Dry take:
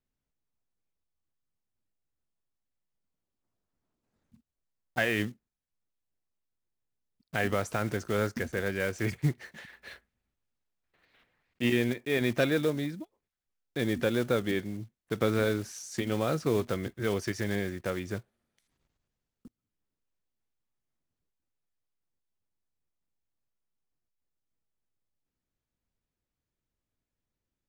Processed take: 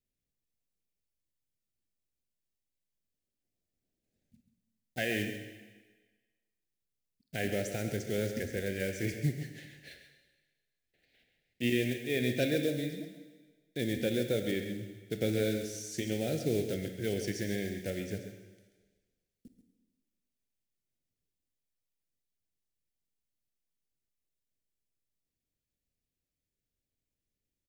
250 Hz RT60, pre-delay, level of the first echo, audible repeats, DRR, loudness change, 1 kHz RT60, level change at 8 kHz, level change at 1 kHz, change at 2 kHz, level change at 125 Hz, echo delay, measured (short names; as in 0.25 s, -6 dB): 1.3 s, 27 ms, -10.5 dB, 1, 5.0 dB, -3.5 dB, 1.4 s, +0.5 dB, -12.0 dB, -5.5 dB, -3.0 dB, 0.135 s